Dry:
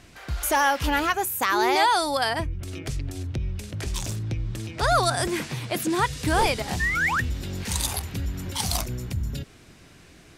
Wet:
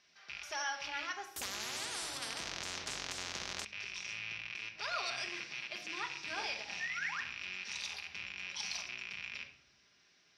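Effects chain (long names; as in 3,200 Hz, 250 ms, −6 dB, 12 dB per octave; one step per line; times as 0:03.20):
loose part that buzzes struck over −33 dBFS, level −15 dBFS
resonant band-pass 5,700 Hz, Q 10
high-frequency loss of the air 420 metres
convolution reverb RT60 0.80 s, pre-delay 5 ms, DRR 3 dB
0:01.36–0:03.65: every bin compressed towards the loudest bin 10 to 1
level +17 dB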